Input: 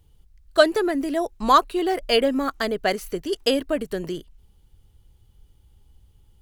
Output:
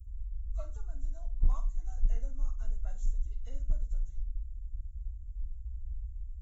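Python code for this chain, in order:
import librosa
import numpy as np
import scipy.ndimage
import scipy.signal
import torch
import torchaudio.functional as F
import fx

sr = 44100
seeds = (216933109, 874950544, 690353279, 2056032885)

y = fx.freq_compress(x, sr, knee_hz=1000.0, ratio=1.5)
y = scipy.signal.sosfilt(scipy.signal.cheby2(4, 50, [160.0, 5200.0], 'bandstop', fs=sr, output='sos'), y)
y = fx.room_flutter(y, sr, wall_m=8.2, rt60_s=0.29)
y = fx.clip_asym(y, sr, top_db=-37.5, bottom_db=-31.0)
y = y * librosa.db_to_amplitude(17.5)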